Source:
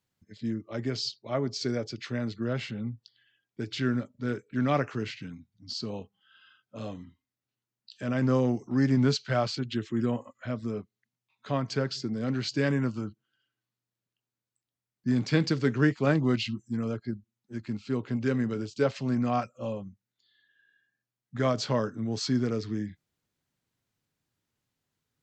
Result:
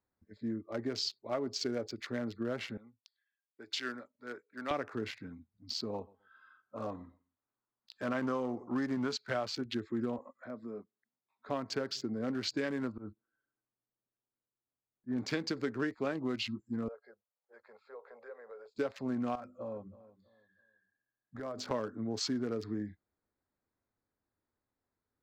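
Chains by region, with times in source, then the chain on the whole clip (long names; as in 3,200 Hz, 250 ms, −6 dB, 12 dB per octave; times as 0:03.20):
0:02.77–0:04.71: high-pass filter 1,300 Hz 6 dB per octave + multiband upward and downward expander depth 40%
0:05.94–0:09.16: parametric band 1,100 Hz +7.5 dB 1 octave + repeating echo 128 ms, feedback 21%, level −23.5 dB
0:10.18–0:11.49: high-pass filter 140 Hz 24 dB per octave + downward compressor 1.5 to 1, threshold −47 dBFS
0:12.92–0:15.18: volume swells 109 ms + high-frequency loss of the air 360 metres
0:16.88–0:18.75: elliptic high-pass filter 480 Hz + downward compressor 2.5 to 1, threshold −49 dBFS + spectral tilt −3 dB per octave
0:19.35–0:21.71: mains-hum notches 50/100/150/200/250/300/350/400 Hz + downward compressor, threshold −34 dBFS + repeating echo 326 ms, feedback 29%, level −18 dB
whole clip: adaptive Wiener filter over 15 samples; parametric band 140 Hz −14.5 dB 0.85 octaves; downward compressor 10 to 1, threshold −30 dBFS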